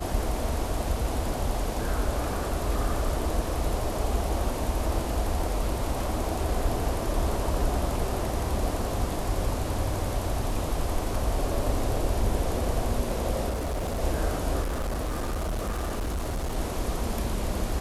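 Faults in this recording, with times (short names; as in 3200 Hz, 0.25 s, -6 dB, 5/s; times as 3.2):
13.49–14.01 clipped -26 dBFS
14.62–16.56 clipped -26 dBFS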